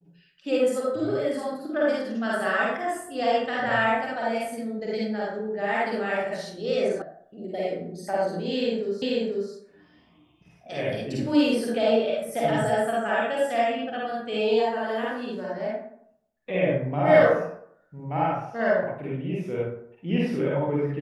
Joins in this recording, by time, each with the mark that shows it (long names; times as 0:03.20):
0:07.02: cut off before it has died away
0:09.02: the same again, the last 0.49 s